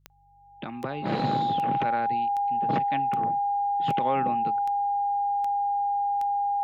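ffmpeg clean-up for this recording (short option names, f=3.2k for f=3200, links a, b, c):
-af "adeclick=t=4,bandreject=f=48:t=h:w=4,bandreject=f=96:t=h:w=4,bandreject=f=144:t=h:w=4,bandreject=f=810:w=30"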